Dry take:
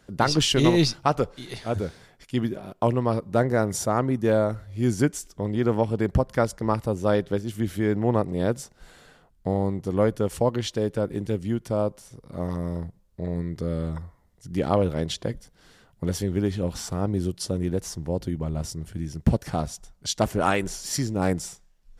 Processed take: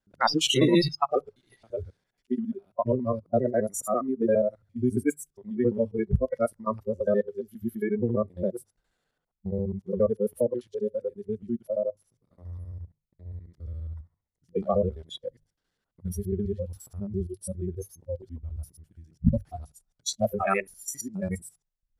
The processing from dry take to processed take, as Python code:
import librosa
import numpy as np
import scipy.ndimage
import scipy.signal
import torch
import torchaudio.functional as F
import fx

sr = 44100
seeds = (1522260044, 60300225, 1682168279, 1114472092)

y = fx.local_reverse(x, sr, ms=68.0)
y = fx.hum_notches(y, sr, base_hz=50, count=3)
y = fx.noise_reduce_blind(y, sr, reduce_db=26)